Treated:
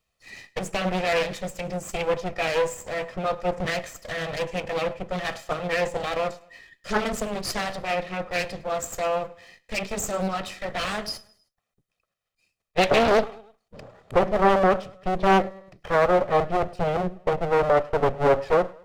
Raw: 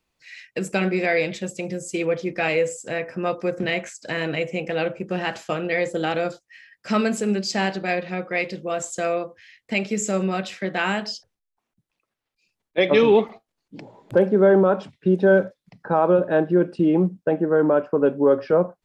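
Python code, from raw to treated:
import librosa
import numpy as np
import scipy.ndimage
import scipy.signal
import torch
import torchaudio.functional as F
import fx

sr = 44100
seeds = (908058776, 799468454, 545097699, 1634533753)

y = fx.lower_of_two(x, sr, delay_ms=1.6)
y = fx.echo_feedback(y, sr, ms=104, feedback_pct=49, wet_db=-23)
y = fx.doppler_dist(y, sr, depth_ms=0.69)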